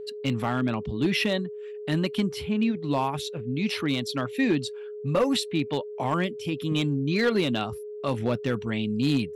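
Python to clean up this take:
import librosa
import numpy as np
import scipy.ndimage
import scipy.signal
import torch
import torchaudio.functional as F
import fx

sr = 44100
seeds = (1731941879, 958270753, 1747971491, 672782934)

y = fx.fix_declip(x, sr, threshold_db=-16.5)
y = fx.notch(y, sr, hz=420.0, q=30.0)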